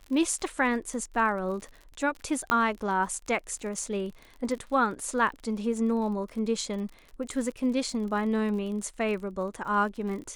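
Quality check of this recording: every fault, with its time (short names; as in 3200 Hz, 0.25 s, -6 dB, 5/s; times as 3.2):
crackle 46/s -37 dBFS
2.5 pop -11 dBFS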